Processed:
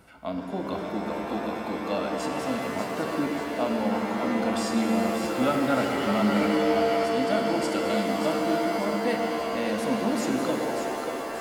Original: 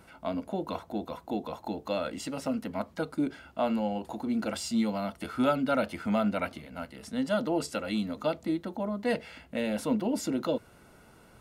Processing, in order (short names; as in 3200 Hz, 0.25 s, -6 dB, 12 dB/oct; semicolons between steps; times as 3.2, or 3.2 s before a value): split-band echo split 410 Hz, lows 0.119 s, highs 0.588 s, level -7 dB; shimmer reverb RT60 3.8 s, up +7 st, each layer -2 dB, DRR 3.5 dB